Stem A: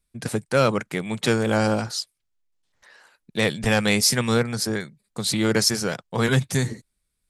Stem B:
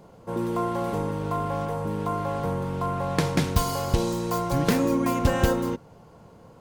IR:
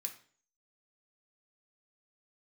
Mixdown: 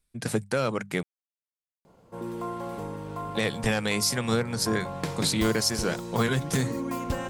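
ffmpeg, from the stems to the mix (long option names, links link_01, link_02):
-filter_complex "[0:a]bandreject=frequency=50:width_type=h:width=6,bandreject=frequency=100:width_type=h:width=6,bandreject=frequency=150:width_type=h:width=6,bandreject=frequency=200:width_type=h:width=6,volume=-0.5dB,asplit=3[link_01][link_02][link_03];[link_01]atrim=end=1.03,asetpts=PTS-STARTPTS,afade=type=out:start_time=1.026:duration=0.004:curve=hsin[link_04];[link_02]atrim=start=1.03:end=3.23,asetpts=PTS-STARTPTS,volume=0[link_05];[link_03]atrim=start=3.23,asetpts=PTS-STARTPTS,afade=type=in:duration=0.004:curve=hsin[link_06];[link_04][link_05][link_06]concat=n=3:v=0:a=1[link_07];[1:a]adelay=1850,volume=-8dB,asplit=2[link_08][link_09];[link_09]volume=-10.5dB[link_10];[2:a]atrim=start_sample=2205[link_11];[link_10][link_11]afir=irnorm=-1:irlink=0[link_12];[link_07][link_08][link_12]amix=inputs=3:normalize=0,alimiter=limit=-13.5dB:level=0:latency=1:release=307"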